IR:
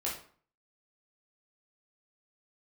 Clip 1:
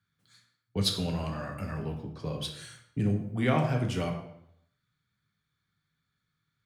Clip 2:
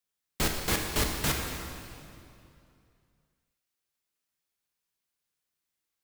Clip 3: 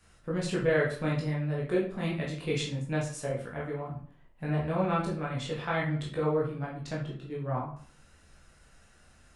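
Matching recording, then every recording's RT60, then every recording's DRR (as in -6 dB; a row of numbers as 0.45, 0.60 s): 3; 0.75, 2.6, 0.50 s; 1.5, 1.0, -5.0 dB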